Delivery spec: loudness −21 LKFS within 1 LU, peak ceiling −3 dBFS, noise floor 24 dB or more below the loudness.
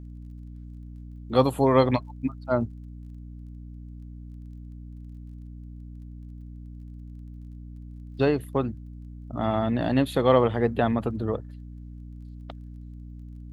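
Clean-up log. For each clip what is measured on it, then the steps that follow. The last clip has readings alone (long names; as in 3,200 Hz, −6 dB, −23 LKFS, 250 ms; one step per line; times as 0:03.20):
crackle rate 22 per second; mains hum 60 Hz; hum harmonics up to 300 Hz; level of the hum −38 dBFS; integrated loudness −25.0 LKFS; sample peak −6.0 dBFS; target loudness −21.0 LKFS
→ click removal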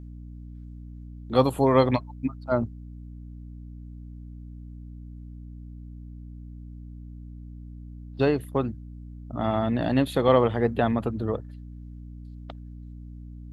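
crackle rate 0 per second; mains hum 60 Hz; hum harmonics up to 300 Hz; level of the hum −38 dBFS
→ hum removal 60 Hz, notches 5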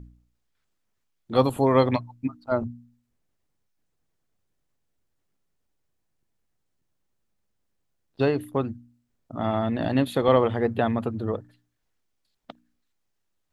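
mains hum none found; integrated loudness −25.0 LKFS; sample peak −5.5 dBFS; target loudness −21.0 LKFS
→ level +4 dB
brickwall limiter −3 dBFS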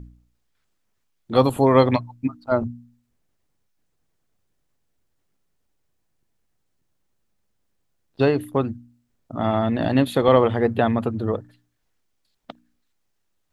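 integrated loudness −21.0 LKFS; sample peak −3.0 dBFS; background noise floor −72 dBFS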